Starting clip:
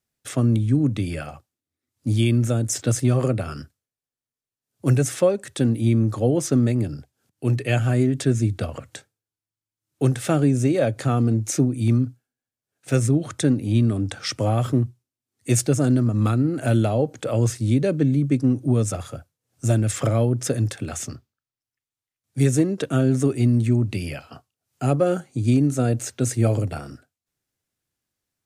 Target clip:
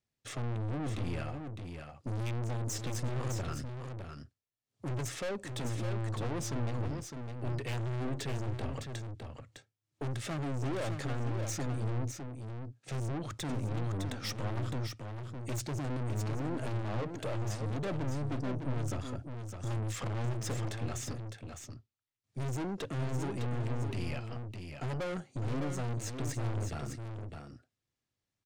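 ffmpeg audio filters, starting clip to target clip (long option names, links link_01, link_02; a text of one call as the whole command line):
ffmpeg -i in.wav -filter_complex "[0:a]lowpass=6300,equalizer=frequency=110:width_type=o:width=0.31:gain=6.5,bandreject=frequency=1500:width=12,aeval=exprs='(tanh(31.6*val(0)+0.4)-tanh(0.4))/31.6':channel_layout=same,asplit=2[link_01][link_02];[link_02]aecho=0:1:608:0.473[link_03];[link_01][link_03]amix=inputs=2:normalize=0,volume=-4dB" out.wav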